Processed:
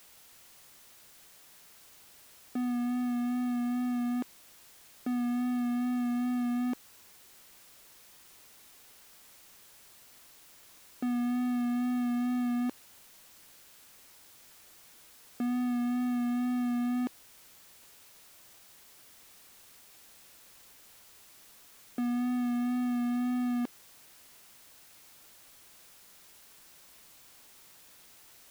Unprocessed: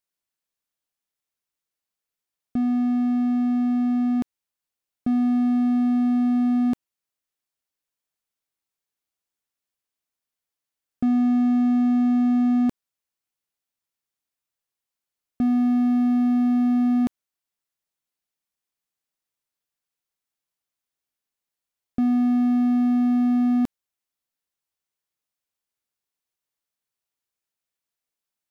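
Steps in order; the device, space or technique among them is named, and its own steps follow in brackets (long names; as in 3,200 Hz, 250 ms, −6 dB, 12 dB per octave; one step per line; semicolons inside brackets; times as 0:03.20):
tape answering machine (band-pass filter 330–2,900 Hz; soft clipping −27 dBFS, distortion −15 dB; tape wow and flutter 23 cents; white noise bed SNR 21 dB)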